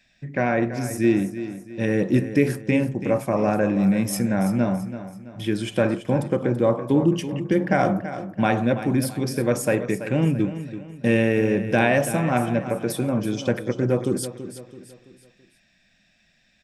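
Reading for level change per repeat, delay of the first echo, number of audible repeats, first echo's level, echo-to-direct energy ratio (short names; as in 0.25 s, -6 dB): -7.5 dB, 0.332 s, 3, -12.0 dB, -11.0 dB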